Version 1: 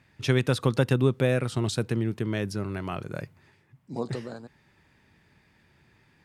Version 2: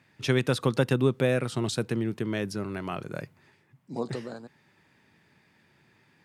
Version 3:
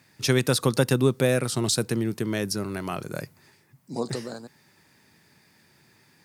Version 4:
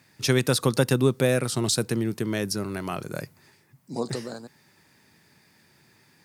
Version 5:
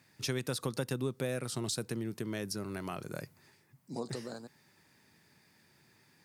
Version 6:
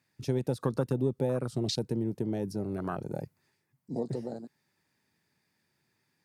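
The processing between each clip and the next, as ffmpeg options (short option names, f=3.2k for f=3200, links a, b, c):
-af "highpass=130"
-af "aexciter=amount=1.7:drive=9.1:freq=4.3k,volume=2.5dB"
-af anull
-af "acompressor=threshold=-30dB:ratio=2,volume=-6dB"
-af "afwtdn=0.0112,volume=6dB"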